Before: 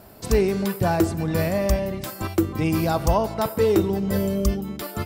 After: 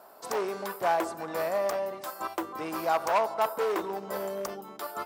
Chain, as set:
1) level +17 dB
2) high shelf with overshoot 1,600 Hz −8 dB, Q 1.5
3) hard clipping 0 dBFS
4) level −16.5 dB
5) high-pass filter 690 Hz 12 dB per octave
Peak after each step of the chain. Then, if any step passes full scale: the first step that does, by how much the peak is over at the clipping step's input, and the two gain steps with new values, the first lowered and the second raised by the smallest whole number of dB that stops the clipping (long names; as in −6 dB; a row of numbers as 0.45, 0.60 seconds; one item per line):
+7.5, +9.0, 0.0, −16.5, −12.5 dBFS
step 1, 9.0 dB
step 1 +8 dB, step 4 −7.5 dB